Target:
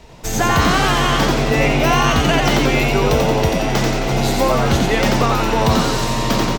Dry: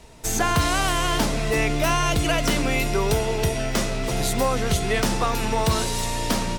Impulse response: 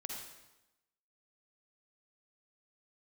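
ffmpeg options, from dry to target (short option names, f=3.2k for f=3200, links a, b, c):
-filter_complex "[0:a]equalizer=f=9.8k:w=1.4:g=-13,asplit=9[a][b][c][d][e][f][g][h][i];[b]adelay=88,afreqshift=100,volume=-3dB[j];[c]adelay=176,afreqshift=200,volume=-8.2dB[k];[d]adelay=264,afreqshift=300,volume=-13.4dB[l];[e]adelay=352,afreqshift=400,volume=-18.6dB[m];[f]adelay=440,afreqshift=500,volume=-23.8dB[n];[g]adelay=528,afreqshift=600,volume=-29dB[o];[h]adelay=616,afreqshift=700,volume=-34.2dB[p];[i]adelay=704,afreqshift=800,volume=-39.3dB[q];[a][j][k][l][m][n][o][p][q]amix=inputs=9:normalize=0,volume=4.5dB"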